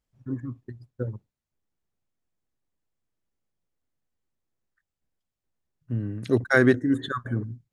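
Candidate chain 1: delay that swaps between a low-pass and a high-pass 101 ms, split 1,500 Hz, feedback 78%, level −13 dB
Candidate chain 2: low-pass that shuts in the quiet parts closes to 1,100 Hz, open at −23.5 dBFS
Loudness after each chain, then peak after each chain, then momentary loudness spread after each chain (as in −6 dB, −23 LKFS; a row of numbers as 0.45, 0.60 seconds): −25.5, −26.0 LKFS; −5.5, −5.5 dBFS; 19, 20 LU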